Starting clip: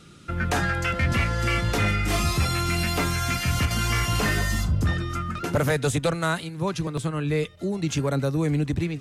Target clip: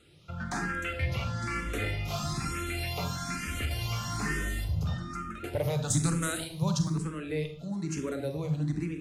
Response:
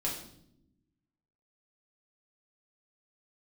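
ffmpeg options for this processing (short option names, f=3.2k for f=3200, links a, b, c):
-filter_complex "[0:a]asettb=1/sr,asplit=3[a][b][c];[a]atrim=end=5.904[d];[b]atrim=start=5.9:end=6.95,asetpts=PTS-STARTPTS,afade=t=in:d=0.004:c=qsin,afade=t=out:st=1.046:d=0.004:c=qsin,bass=f=250:g=9,treble=f=4k:g=14[e];[c]atrim=start=6.946[f];[d][e]acrossfade=d=0.004:c1=hsin:c2=qsin[g];[g][f]acrossfade=d=0.004:c1=qsin:c2=hsin,asplit=2[h][i];[1:a]atrim=start_sample=2205,adelay=40[j];[i][j]afir=irnorm=-1:irlink=0,volume=-10.5dB[k];[h][k]amix=inputs=2:normalize=0,asplit=2[l][m];[m]afreqshift=1.1[n];[l][n]amix=inputs=2:normalize=1,volume=-7dB"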